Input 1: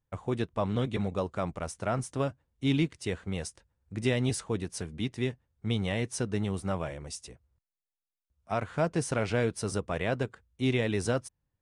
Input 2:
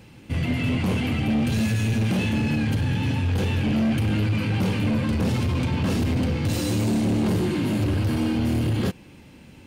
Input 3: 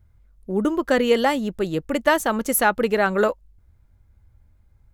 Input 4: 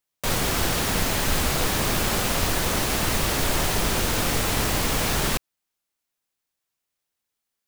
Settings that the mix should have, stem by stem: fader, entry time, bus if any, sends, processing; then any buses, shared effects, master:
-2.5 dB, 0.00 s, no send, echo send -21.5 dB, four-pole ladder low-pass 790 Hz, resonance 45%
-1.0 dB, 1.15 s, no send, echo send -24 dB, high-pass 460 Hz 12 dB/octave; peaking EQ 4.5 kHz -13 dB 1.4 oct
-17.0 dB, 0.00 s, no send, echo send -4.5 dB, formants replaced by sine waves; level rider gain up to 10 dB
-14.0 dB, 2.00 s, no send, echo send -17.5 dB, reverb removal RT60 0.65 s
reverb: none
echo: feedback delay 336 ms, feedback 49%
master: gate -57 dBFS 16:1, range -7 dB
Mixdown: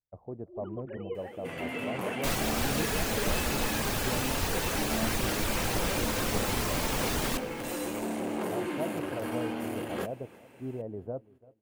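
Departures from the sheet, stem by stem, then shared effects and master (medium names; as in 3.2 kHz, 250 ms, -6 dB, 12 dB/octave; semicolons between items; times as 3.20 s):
stem 3 -17.0 dB -> -26.5 dB; stem 4 -14.0 dB -> -6.0 dB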